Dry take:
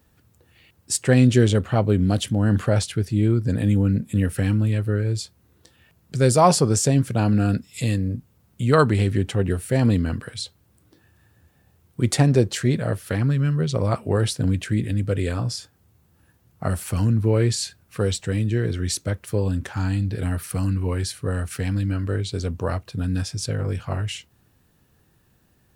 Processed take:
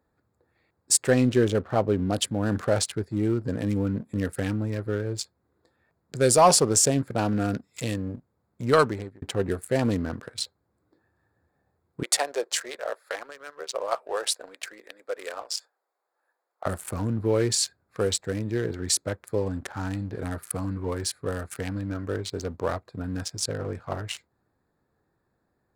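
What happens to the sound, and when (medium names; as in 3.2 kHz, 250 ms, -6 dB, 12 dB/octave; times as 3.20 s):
1.11–2.13 s: treble shelf 3.8 kHz -11 dB
8.73–9.22 s: fade out
12.03–16.66 s: high-pass 530 Hz 24 dB/octave
whole clip: local Wiener filter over 15 samples; tone controls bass -11 dB, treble +4 dB; waveshaping leveller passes 1; trim -3 dB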